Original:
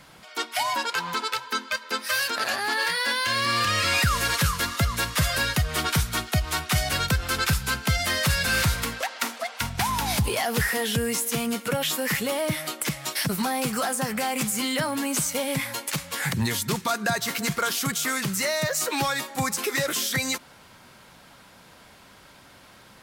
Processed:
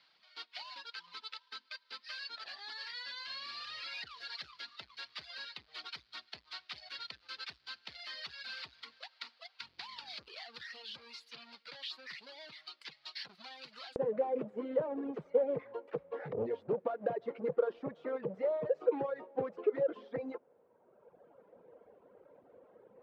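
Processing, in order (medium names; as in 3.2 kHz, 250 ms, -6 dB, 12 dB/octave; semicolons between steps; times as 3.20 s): square wave that keeps the level; reverb removal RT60 1.7 s; compression 3:1, threshold -22 dBFS, peak gain reduction 6.5 dB; band-pass filter 4.5 kHz, Q 5.5, from 13.96 s 480 Hz; distance through air 370 m; trim +3.5 dB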